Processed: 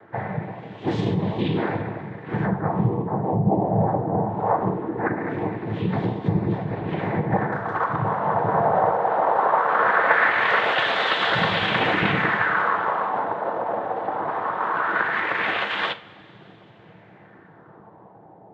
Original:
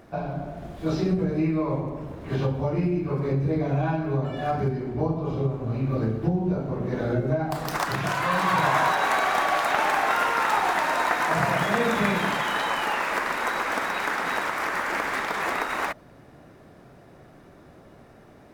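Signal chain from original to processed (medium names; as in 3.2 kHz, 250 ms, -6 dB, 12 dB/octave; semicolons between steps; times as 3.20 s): 4.50–5.81 s: comb 3.1 ms, depth 63%; noise-vocoded speech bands 6; LFO low-pass sine 0.2 Hz 730–3400 Hz; two-slope reverb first 0.23 s, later 2.6 s, from -22 dB, DRR 7 dB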